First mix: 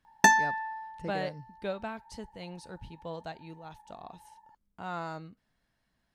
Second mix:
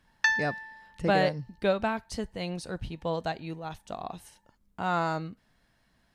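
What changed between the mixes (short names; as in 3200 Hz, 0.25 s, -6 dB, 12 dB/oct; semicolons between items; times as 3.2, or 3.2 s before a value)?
speech +9.0 dB; background: add Chebyshev band-pass 1200–5000 Hz, order 3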